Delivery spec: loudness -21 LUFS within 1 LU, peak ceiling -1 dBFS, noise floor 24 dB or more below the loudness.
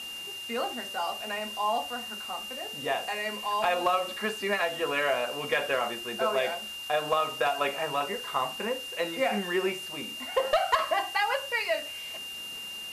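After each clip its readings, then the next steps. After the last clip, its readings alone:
steady tone 2800 Hz; tone level -37 dBFS; noise floor -39 dBFS; noise floor target -54 dBFS; loudness -29.5 LUFS; peak -15.0 dBFS; loudness target -21.0 LUFS
-> notch 2800 Hz, Q 30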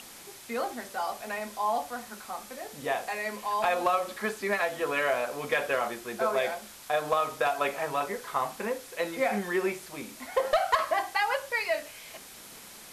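steady tone none; noise floor -48 dBFS; noise floor target -54 dBFS
-> denoiser 6 dB, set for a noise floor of -48 dBFS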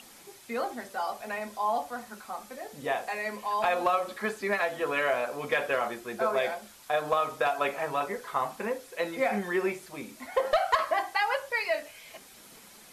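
noise floor -52 dBFS; noise floor target -54 dBFS
-> denoiser 6 dB, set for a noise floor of -52 dBFS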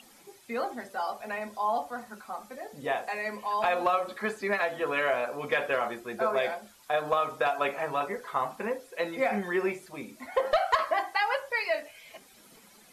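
noise floor -56 dBFS; loudness -30.0 LUFS; peak -15.0 dBFS; loudness target -21.0 LUFS
-> gain +9 dB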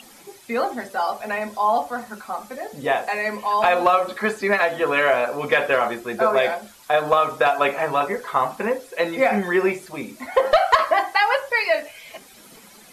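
loudness -21.0 LUFS; peak -6.0 dBFS; noise floor -47 dBFS

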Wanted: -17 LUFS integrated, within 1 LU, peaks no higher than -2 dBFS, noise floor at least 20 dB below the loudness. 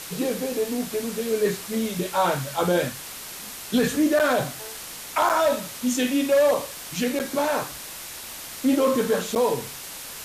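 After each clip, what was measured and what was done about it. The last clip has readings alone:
dropouts 4; longest dropout 8.4 ms; noise floor -38 dBFS; noise floor target -45 dBFS; loudness -24.5 LUFS; peak -11.0 dBFS; loudness target -17.0 LUFS
-> interpolate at 4.19/5.29/7.19/9.35, 8.4 ms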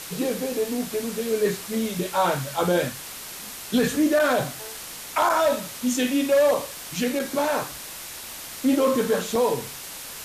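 dropouts 0; noise floor -38 dBFS; noise floor target -44 dBFS
-> denoiser 6 dB, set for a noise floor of -38 dBFS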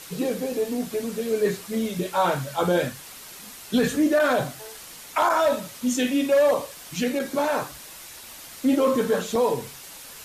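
noise floor -43 dBFS; noise floor target -44 dBFS
-> denoiser 6 dB, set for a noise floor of -43 dBFS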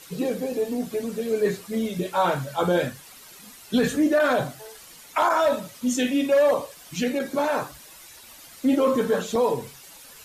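noise floor -47 dBFS; loudness -24.0 LUFS; peak -12.0 dBFS; loudness target -17.0 LUFS
-> gain +7 dB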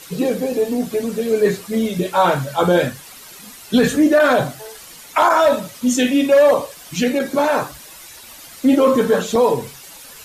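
loudness -17.0 LUFS; peak -5.0 dBFS; noise floor -40 dBFS

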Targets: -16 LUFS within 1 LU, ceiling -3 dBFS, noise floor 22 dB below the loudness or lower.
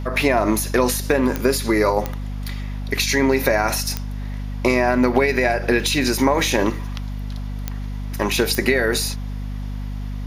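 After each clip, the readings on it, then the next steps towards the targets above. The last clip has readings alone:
clicks 5; hum 50 Hz; harmonics up to 250 Hz; hum level -25 dBFS; loudness -20.0 LUFS; peak -3.0 dBFS; loudness target -16.0 LUFS
-> de-click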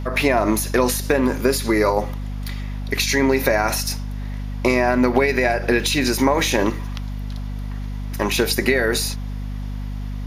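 clicks 0; hum 50 Hz; harmonics up to 250 Hz; hum level -25 dBFS
-> notches 50/100/150/200/250 Hz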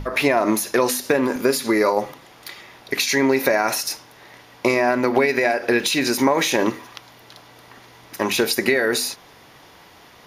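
hum none; loudness -20.0 LUFS; peak -3.5 dBFS; loudness target -16.0 LUFS
-> gain +4 dB; limiter -3 dBFS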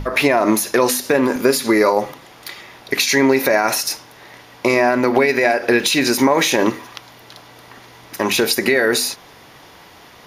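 loudness -16.5 LUFS; peak -3.0 dBFS; noise floor -44 dBFS

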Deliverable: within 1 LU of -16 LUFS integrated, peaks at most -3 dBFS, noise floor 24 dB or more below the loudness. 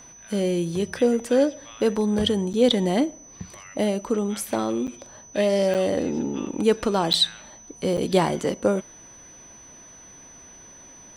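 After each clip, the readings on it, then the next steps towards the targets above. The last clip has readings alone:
dropouts 5; longest dropout 8.0 ms; steady tone 6000 Hz; tone level -45 dBFS; loudness -23.5 LUFS; peak -5.5 dBFS; loudness target -16.0 LUFS
-> interpolate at 2.53/4.87/5.74/7.13/7.97, 8 ms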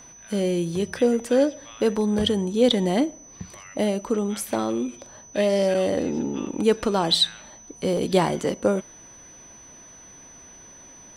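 dropouts 0; steady tone 6000 Hz; tone level -45 dBFS
-> notch 6000 Hz, Q 30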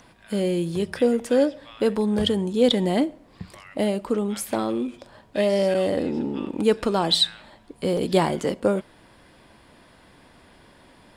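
steady tone none; loudness -23.5 LUFS; peak -6.0 dBFS; loudness target -16.0 LUFS
-> gain +7.5 dB; limiter -3 dBFS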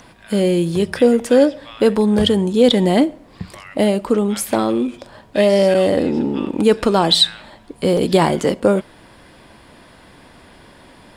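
loudness -16.5 LUFS; peak -3.0 dBFS; noise floor -46 dBFS

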